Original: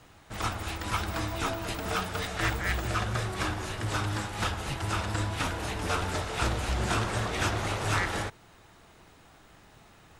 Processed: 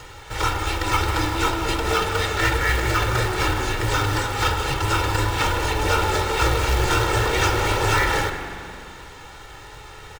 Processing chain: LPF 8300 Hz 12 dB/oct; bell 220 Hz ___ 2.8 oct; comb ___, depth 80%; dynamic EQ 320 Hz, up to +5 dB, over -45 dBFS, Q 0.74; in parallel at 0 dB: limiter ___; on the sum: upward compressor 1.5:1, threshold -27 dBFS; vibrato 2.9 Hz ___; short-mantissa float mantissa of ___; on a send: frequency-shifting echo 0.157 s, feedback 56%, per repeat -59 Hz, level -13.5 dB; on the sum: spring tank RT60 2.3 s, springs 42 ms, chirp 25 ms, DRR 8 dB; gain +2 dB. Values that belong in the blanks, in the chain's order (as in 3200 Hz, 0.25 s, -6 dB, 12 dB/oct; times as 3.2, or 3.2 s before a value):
-5.5 dB, 2.2 ms, -20.5 dBFS, 24 cents, 2-bit